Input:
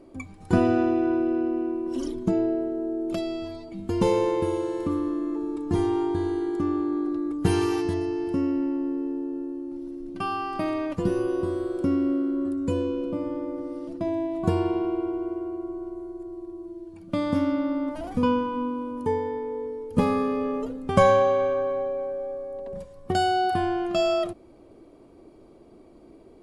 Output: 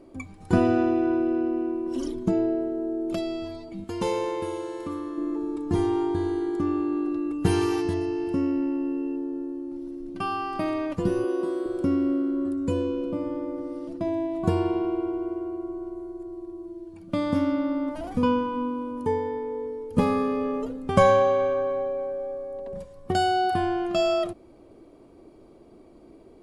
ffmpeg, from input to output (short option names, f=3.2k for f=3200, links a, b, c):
-filter_complex "[0:a]asettb=1/sr,asplit=3[a][b][c];[a]atrim=end=3.844[d];[b]atrim=start=3.84:end=5.18,asetpts=PTS-STARTPTS,afade=t=in:d=0.004:c=qsin,afade=t=out:st=1.336:d=0.004:c=qsin,lowshelf=f=460:g=-9.5[e];[c]atrim=start=5.176[f];[d][e]acrossfade=d=0.004:c1=hsin:c2=qsin[g];[g][f]acrossfade=d=0.004:c1=qsin:c2=hsin,asettb=1/sr,asplit=3[h][i][j];[h]atrim=end=6.664[k];[i]atrim=start=6.66:end=9.16,asetpts=PTS-STARTPTS,afade=t=in:d=0.004:c=qsin,afade=t=out:st=2.496:d=0.004:c=qsin,aeval=exprs='val(0)+0.00178*sin(2*PI*2700*n/s)':c=same[l];[j]atrim=start=9.156[m];[k][l]acrossfade=d=0.004:c1=hsin:c2=qsin[n];[n][m]acrossfade=d=0.004:c1=qsin:c2=hsin,asettb=1/sr,asplit=3[o][p][q];[o]atrim=end=11.244[r];[p]atrim=start=11.24:end=11.66,asetpts=PTS-STARTPTS,afade=t=in:d=0.004:c=qsin,afade=t=out:st=0.416:d=0.004:c=qsin,highpass=f=210:w=0.5412,highpass=f=210:w=1.3066[s];[q]atrim=start=11.656[t];[r][s]acrossfade=d=0.004:c1=hsin:c2=qsin[u];[u][t]acrossfade=d=0.004:c1=qsin:c2=hsin"